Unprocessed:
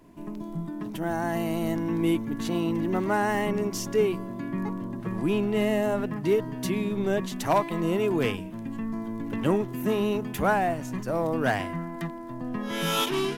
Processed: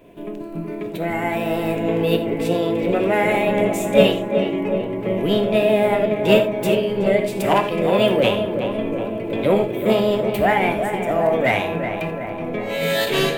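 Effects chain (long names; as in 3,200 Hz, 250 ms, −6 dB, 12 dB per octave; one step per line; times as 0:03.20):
graphic EQ with 10 bands 500 Hz +8 dB, 1,000 Hz −10 dB, 2,000 Hz +10 dB, 4,000 Hz −8 dB
formants moved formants +4 semitones
feedback echo with a low-pass in the loop 372 ms, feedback 71%, low-pass 1,900 Hz, level −7 dB
reverb whose tail is shaped and stops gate 110 ms flat, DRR 6.5 dB
level +3.5 dB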